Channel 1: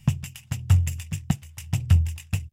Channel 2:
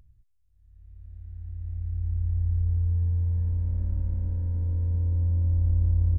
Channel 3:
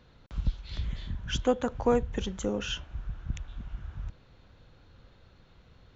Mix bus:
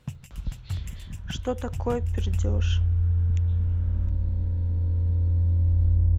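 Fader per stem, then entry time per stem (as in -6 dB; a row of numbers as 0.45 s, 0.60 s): -12.5 dB, +2.0 dB, -3.0 dB; 0.00 s, 0.15 s, 0.00 s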